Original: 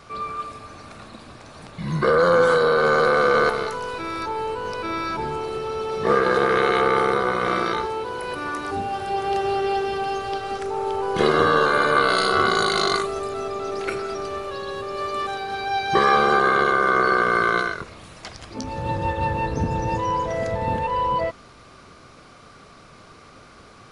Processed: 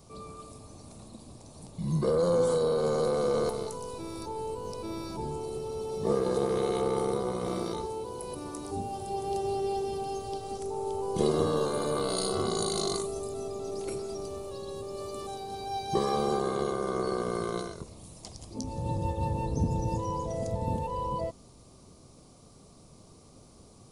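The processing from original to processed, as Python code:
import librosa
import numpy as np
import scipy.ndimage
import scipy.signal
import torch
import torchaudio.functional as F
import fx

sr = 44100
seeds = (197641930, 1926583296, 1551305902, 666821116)

y = fx.curve_eq(x, sr, hz=(190.0, 970.0, 1500.0, 8900.0), db=(0, -8, -24, 6))
y = F.gain(torch.from_numpy(y), -3.0).numpy()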